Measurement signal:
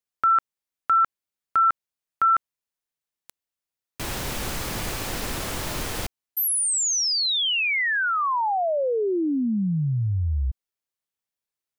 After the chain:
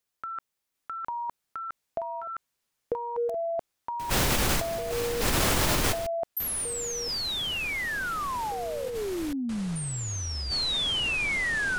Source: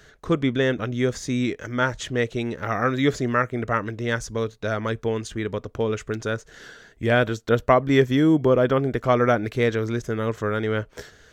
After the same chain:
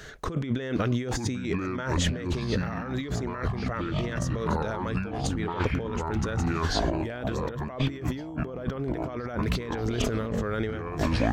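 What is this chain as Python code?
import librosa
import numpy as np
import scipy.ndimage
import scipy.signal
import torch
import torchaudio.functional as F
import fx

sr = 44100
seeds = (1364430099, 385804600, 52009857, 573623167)

y = fx.echo_pitch(x, sr, ms=750, semitones=-6, count=3, db_per_echo=-3.0)
y = fx.over_compress(y, sr, threshold_db=-30.0, ratio=-1.0)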